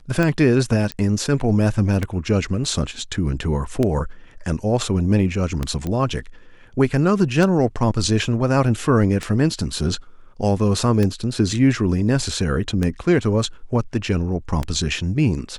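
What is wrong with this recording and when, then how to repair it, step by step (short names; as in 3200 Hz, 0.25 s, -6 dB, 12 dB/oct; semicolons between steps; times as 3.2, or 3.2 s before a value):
tick 33 1/3 rpm -9 dBFS
0.92 pop -11 dBFS
5.87 pop -14 dBFS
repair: de-click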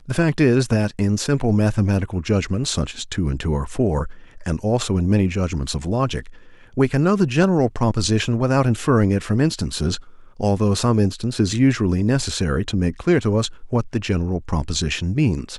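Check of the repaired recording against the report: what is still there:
none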